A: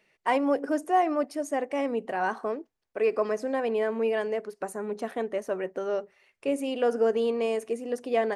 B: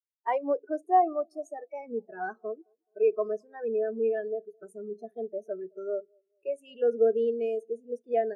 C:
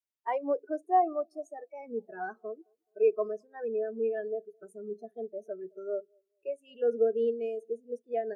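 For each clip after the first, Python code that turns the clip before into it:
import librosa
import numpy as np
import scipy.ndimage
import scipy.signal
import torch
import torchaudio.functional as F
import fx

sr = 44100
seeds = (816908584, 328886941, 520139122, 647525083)

y1 = fx.noise_reduce_blind(x, sr, reduce_db=17)
y1 = fx.echo_wet_bandpass(y1, sr, ms=212, feedback_pct=45, hz=520.0, wet_db=-23)
y1 = fx.spectral_expand(y1, sr, expansion=1.5)
y2 = fx.am_noise(y1, sr, seeds[0], hz=5.7, depth_pct=60)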